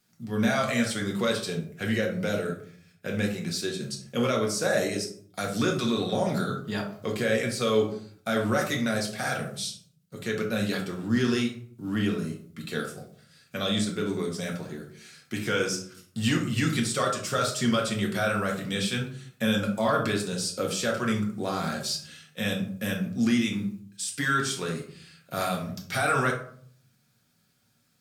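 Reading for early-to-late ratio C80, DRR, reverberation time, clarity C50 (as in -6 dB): 12.0 dB, -1.0 dB, 0.55 s, 7.0 dB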